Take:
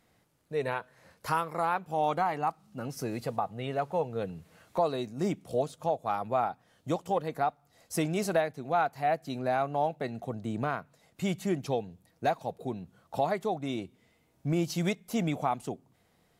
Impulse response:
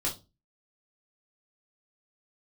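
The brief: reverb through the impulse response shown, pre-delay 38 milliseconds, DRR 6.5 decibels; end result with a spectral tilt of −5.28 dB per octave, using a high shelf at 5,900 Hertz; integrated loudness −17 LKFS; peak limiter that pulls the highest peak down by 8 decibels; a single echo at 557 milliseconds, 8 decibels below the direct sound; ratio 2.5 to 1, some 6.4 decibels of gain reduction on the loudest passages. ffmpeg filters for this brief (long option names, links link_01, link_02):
-filter_complex "[0:a]highshelf=frequency=5900:gain=9,acompressor=threshold=-32dB:ratio=2.5,alimiter=level_in=2.5dB:limit=-24dB:level=0:latency=1,volume=-2.5dB,aecho=1:1:557:0.398,asplit=2[link_01][link_02];[1:a]atrim=start_sample=2205,adelay=38[link_03];[link_02][link_03]afir=irnorm=-1:irlink=0,volume=-11.5dB[link_04];[link_01][link_04]amix=inputs=2:normalize=0,volume=20dB"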